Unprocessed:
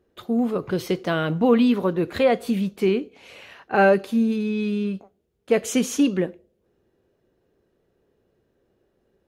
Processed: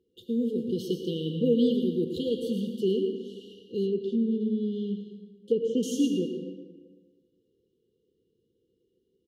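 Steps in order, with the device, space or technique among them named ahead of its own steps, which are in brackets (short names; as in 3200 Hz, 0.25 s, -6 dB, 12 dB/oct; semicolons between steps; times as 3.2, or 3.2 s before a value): PA in a hall (HPF 140 Hz 6 dB/oct; bell 2300 Hz +4 dB 1.1 oct; echo 0.113 s -10.5 dB; reverb RT60 1.5 s, pre-delay 75 ms, DRR 5 dB); FFT band-reject 520–2800 Hz; 3.85–5.83 treble ducked by the level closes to 2000 Hz, closed at -19 dBFS; high shelf 3700 Hz -5.5 dB; gain -5 dB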